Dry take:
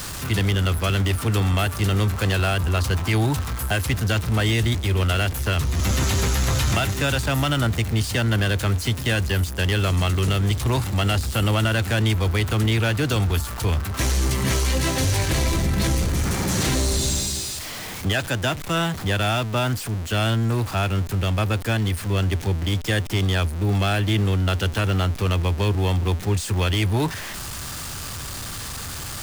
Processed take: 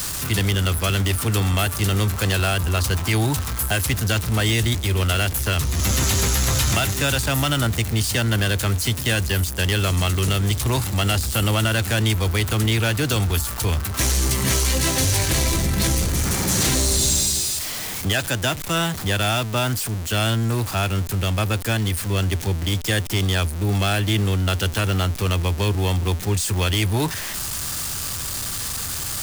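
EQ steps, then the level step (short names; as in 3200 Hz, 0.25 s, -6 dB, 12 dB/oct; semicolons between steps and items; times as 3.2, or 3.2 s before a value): high shelf 4700 Hz +9 dB; 0.0 dB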